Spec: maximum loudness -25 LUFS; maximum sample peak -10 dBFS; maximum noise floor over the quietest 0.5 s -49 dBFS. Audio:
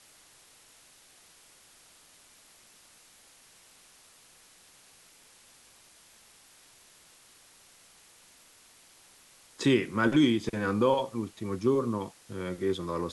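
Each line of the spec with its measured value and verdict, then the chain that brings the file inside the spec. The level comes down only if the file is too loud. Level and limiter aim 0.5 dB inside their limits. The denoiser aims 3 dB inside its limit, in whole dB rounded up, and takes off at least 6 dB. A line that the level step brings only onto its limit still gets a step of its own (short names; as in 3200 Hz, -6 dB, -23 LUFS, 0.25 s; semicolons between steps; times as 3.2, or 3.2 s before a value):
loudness -28.5 LUFS: OK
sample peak -13.0 dBFS: OK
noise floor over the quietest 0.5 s -58 dBFS: OK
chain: none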